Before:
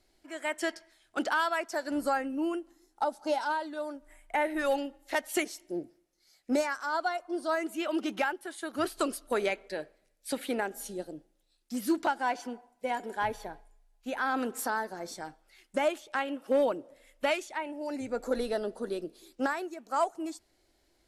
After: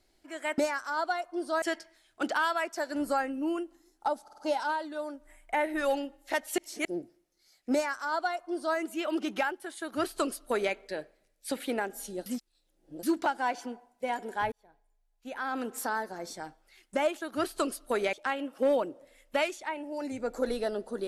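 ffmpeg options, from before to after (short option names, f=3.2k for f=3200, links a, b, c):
-filter_complex "[0:a]asplit=13[a][b][c][d][e][f][g][h][i][j][k][l][m];[a]atrim=end=0.582[n];[b]atrim=start=6.538:end=7.582[o];[c]atrim=start=0.578:end=3.242[p];[d]atrim=start=3.188:end=3.242[q];[e]atrim=start=3.188:end=3.242[r];[f]atrim=start=3.188:end=5.392[s];[g]atrim=start=5.388:end=5.662,asetpts=PTS-STARTPTS,areverse[t];[h]atrim=start=5.658:end=11.072[u];[i]atrim=start=11.068:end=11.842,asetpts=PTS-STARTPTS,areverse[v];[j]atrim=start=11.838:end=13.33,asetpts=PTS-STARTPTS,afade=t=out:st=1.488:d=0.004:c=hsin[w];[k]atrim=start=13.33:end=16.022,asetpts=PTS-STARTPTS,afade=t=in:d=1.47[x];[l]atrim=start=8.618:end=9.542[y];[m]atrim=start=16.018[z];[n][o]acrossfade=d=0.004:c1=hsin:c2=hsin[aa];[aa][p]acrossfade=d=0.004:c1=hsin:c2=hsin[ab];[ab][q]acrossfade=d=0.004:c1=hsin:c2=hsin[ac];[ac][r]acrossfade=d=0.004:c1=hsin:c2=hsin[ad];[ad][s]acrossfade=d=0.004:c1=hsin:c2=hsin[ae];[ae][t]acrossfade=d=0.004:c1=hsin:c2=hsin[af];[af][u]acrossfade=d=0.004:c1=hsin:c2=hsin[ag];[ag][v]acrossfade=d=0.004:c1=hsin:c2=hsin[ah];[w][x]concat=n=2:v=0:a=1[ai];[ah][ai]acrossfade=d=0.004:c1=hsin:c2=hsin[aj];[aj][y]acrossfade=d=0.004:c1=hsin:c2=hsin[ak];[ak][z]acrossfade=d=0.004:c1=hsin:c2=hsin"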